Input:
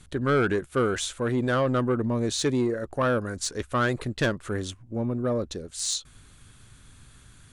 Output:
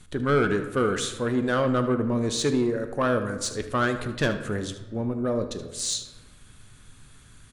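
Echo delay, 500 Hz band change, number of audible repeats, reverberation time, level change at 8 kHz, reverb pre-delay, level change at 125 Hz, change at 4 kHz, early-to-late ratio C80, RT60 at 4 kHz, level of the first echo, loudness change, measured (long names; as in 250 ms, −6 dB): 76 ms, +1.0 dB, 1, 1.3 s, +0.5 dB, 4 ms, −0.5 dB, +0.5 dB, 12.5 dB, 0.75 s, −14.0 dB, +1.0 dB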